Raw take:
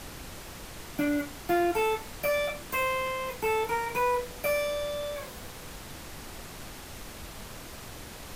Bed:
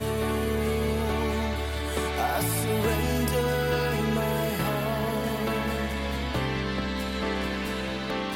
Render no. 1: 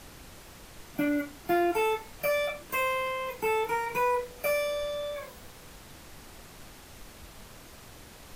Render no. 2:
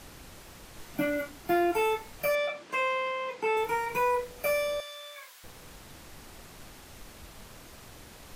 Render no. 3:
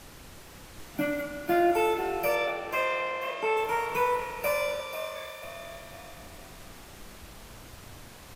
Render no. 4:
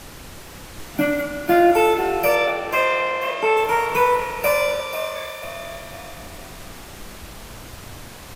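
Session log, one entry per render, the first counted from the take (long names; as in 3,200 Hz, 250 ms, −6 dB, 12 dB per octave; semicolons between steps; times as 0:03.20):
noise reduction from a noise print 6 dB
0:00.73–0:01.29: double-tracking delay 19 ms −5 dB; 0:02.35–0:03.57: band-pass filter 220–5,500 Hz; 0:04.80–0:05.44: high-pass filter 1,400 Hz
echo with shifted repeats 491 ms, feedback 37%, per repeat +43 Hz, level −10 dB; spring reverb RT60 3.9 s, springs 33/43 ms, chirp 80 ms, DRR 6 dB
level +9 dB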